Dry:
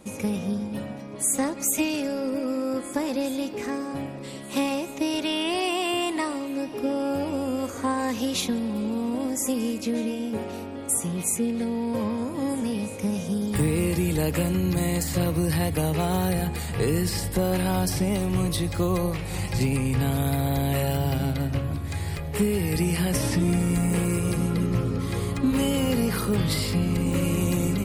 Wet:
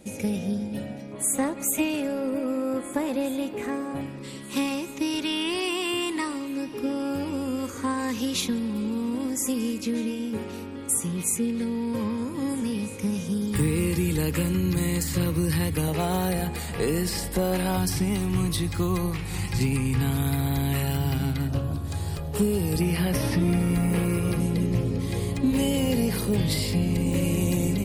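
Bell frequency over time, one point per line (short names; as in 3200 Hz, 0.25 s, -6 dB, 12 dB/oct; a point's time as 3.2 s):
bell -12.5 dB 0.49 oct
1100 Hz
from 1.12 s 5300 Hz
from 4.01 s 670 Hz
from 15.88 s 110 Hz
from 17.77 s 580 Hz
from 21.48 s 2100 Hz
from 22.81 s 7500 Hz
from 24.4 s 1300 Hz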